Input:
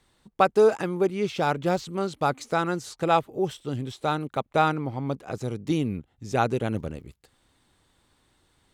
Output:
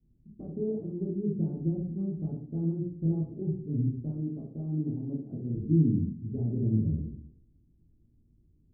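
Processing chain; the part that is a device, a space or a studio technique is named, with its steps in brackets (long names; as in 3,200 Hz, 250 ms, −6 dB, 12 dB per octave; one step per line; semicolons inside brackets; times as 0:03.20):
0:04.09–0:05.55: high-pass filter 170 Hz 12 dB per octave
bass and treble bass −11 dB, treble +14 dB
notch filter 490 Hz, Q 12
club heard from the street (brickwall limiter −18 dBFS, peak gain reduction 11.5 dB; low-pass filter 230 Hz 24 dB per octave; convolution reverb RT60 0.55 s, pre-delay 8 ms, DRR −6 dB)
level +7 dB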